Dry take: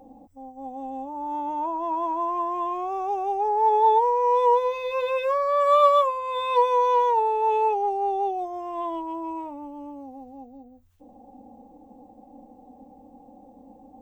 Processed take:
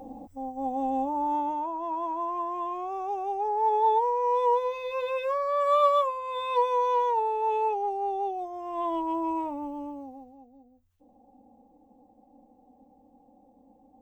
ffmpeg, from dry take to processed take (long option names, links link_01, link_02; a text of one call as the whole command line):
ffmpeg -i in.wav -af "volume=13.5dB,afade=type=out:start_time=1.04:duration=0.61:silence=0.298538,afade=type=in:start_time=8.58:duration=0.53:silence=0.421697,afade=type=out:start_time=9.71:duration=0.66:silence=0.237137" out.wav